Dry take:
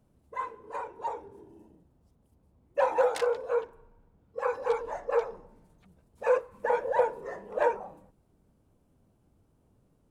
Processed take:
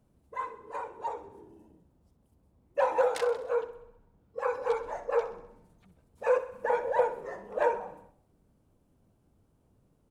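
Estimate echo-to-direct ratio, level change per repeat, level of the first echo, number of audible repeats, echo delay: -12.5 dB, -4.5 dB, -14.5 dB, 5, 64 ms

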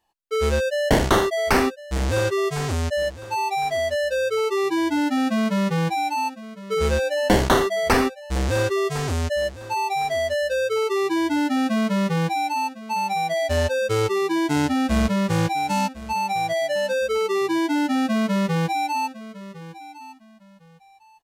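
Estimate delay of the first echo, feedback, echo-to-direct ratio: 1.056 s, 24%, -16.0 dB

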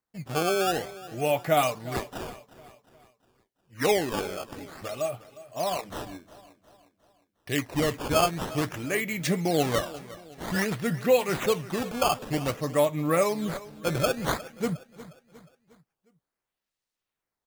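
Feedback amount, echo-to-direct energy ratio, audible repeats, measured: 46%, -16.5 dB, 3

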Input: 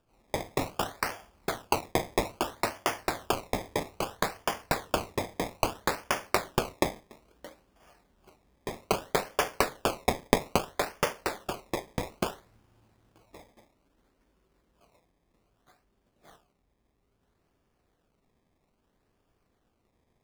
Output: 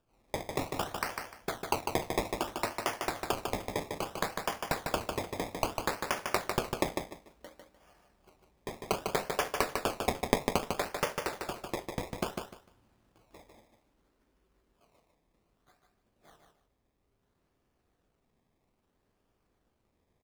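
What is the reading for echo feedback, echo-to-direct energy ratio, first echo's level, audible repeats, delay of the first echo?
22%, -5.0 dB, -5.0 dB, 3, 0.15 s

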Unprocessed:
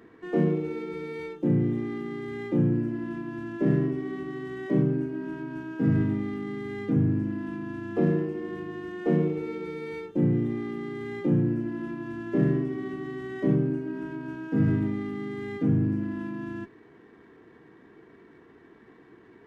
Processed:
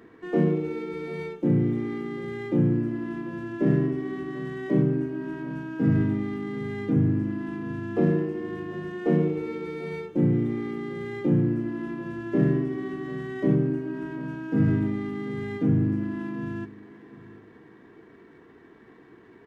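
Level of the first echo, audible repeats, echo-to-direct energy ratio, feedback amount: -18.0 dB, 2, -17.5 dB, 26%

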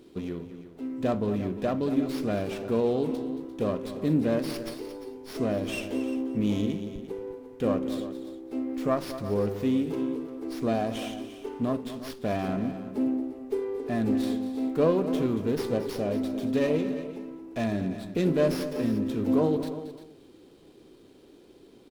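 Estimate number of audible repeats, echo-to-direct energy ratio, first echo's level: 3, -10.5 dB, -13.0 dB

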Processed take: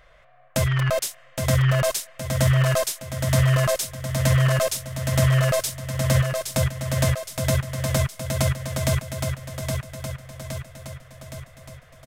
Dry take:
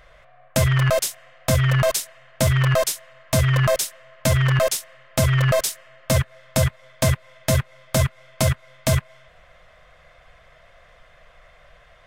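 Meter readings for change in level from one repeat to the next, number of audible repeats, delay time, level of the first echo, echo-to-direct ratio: -5.0 dB, 6, 0.817 s, -5.0 dB, -3.5 dB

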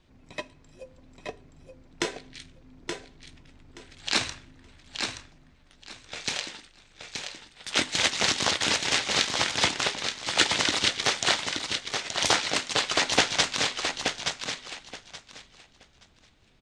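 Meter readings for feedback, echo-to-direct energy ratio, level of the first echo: 20%, -5.5 dB, -5.5 dB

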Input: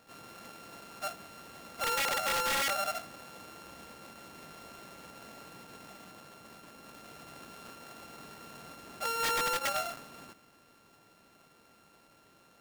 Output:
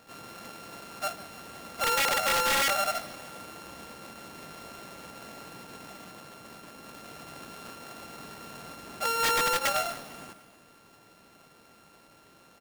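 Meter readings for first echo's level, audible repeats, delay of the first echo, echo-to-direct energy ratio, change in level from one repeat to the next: -18.0 dB, 4, 0.15 s, -16.0 dB, -4.5 dB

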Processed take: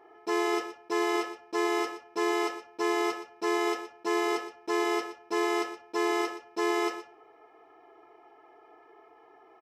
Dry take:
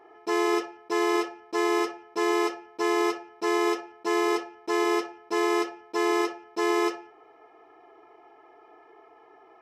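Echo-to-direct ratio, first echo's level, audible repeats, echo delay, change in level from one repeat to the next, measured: -13.0 dB, -13.0 dB, 1, 0.12 s, no steady repeat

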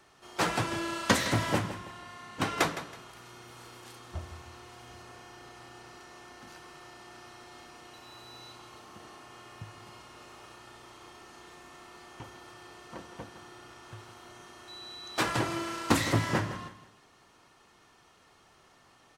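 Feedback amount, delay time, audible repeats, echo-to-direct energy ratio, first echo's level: 31%, 0.162 s, 3, -12.5 dB, -13.0 dB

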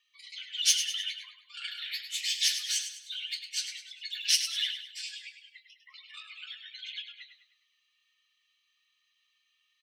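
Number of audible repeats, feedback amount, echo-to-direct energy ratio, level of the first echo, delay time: 4, 42%, -8.0 dB, -9.0 dB, 0.102 s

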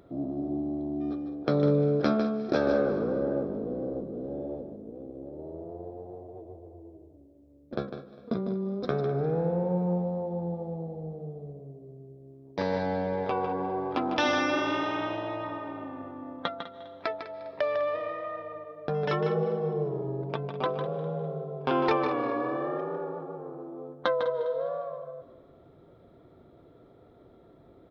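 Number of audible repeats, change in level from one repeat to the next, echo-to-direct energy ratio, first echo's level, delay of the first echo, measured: 3, -8.5 dB, -15.0 dB, -15.5 dB, 0.202 s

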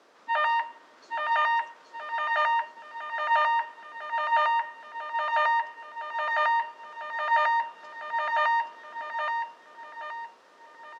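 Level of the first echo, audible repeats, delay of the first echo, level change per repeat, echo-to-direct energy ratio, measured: -5.0 dB, 4, 0.823 s, -8.0 dB, -4.0 dB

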